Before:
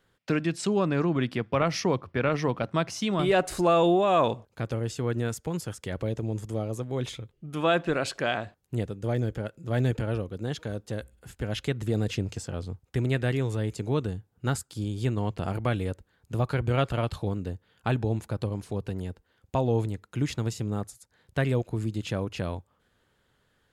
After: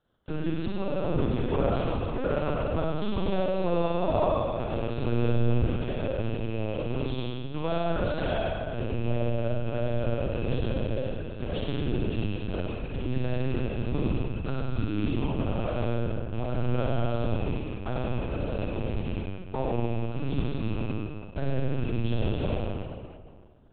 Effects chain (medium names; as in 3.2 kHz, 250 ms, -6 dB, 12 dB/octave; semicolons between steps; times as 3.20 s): rattle on loud lows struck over -33 dBFS, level -27 dBFS; high-pass 46 Hz 24 dB/octave; peaking EQ 2.1 kHz -14 dB 0.79 oct; hum notches 60/120/180/240/300/360/420 Hz; compression 6:1, threshold -29 dBFS, peak gain reduction 10 dB; waveshaping leveller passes 1; comb of notches 400 Hz; flutter echo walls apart 8.8 m, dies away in 1.3 s; algorithmic reverb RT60 2.1 s, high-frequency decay 0.5×, pre-delay 35 ms, DRR 0 dB; LPC vocoder at 8 kHz pitch kept; trim -1.5 dB